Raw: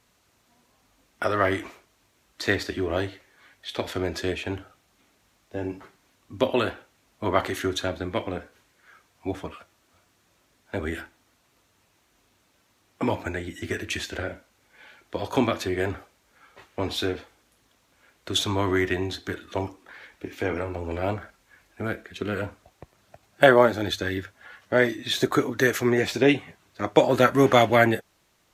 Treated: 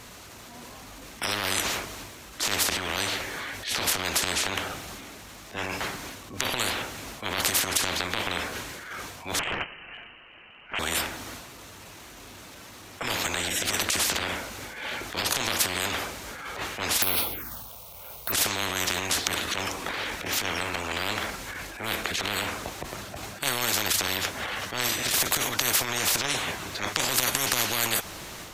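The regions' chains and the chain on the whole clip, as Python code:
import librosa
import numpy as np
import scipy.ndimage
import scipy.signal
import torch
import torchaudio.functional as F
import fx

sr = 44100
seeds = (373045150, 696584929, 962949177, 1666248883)

y = fx.chain(x, sr, fx.leveller(passes=2),
    fx.freq_invert(carrier_hz=3000), at=(9.39, 10.79))
y = fx.chain(y, sr, fx.high_shelf(hz=6200.0, db=-5.0),
    fx.env_phaser(low_hz=270.0, high_hz=1700.0, full_db=-31.5),
    fx.resample_bad(factor=3, down='filtered', up='zero_stuff'), at=(17.02, 18.32))
y = fx.transient(y, sr, attack_db=-12, sustain_db=6)
y = fx.spectral_comp(y, sr, ratio=10.0)
y = F.gain(torch.from_numpy(y), 3.5).numpy()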